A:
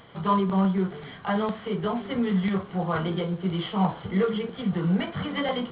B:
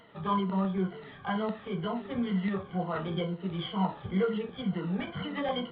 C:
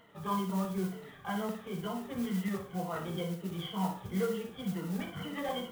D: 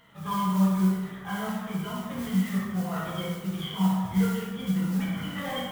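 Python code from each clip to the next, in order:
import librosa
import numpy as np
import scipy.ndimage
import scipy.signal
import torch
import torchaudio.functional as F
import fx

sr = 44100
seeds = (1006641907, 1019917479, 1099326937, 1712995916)

y1 = fx.spec_ripple(x, sr, per_octave=1.9, drift_hz=-2.1, depth_db=13)
y1 = F.gain(torch.from_numpy(y1), -7.0).numpy()
y2 = fx.room_flutter(y1, sr, wall_m=10.1, rt60_s=0.39)
y2 = fx.mod_noise(y2, sr, seeds[0], snr_db=19)
y2 = F.gain(torch.from_numpy(y2), -4.5).numpy()
y3 = fx.peak_eq(y2, sr, hz=430.0, db=-10.5, octaves=1.6)
y3 = fx.rev_plate(y3, sr, seeds[1], rt60_s=1.5, hf_ratio=0.5, predelay_ms=0, drr_db=-3.5)
y3 = F.gain(torch.from_numpy(y3), 3.0).numpy()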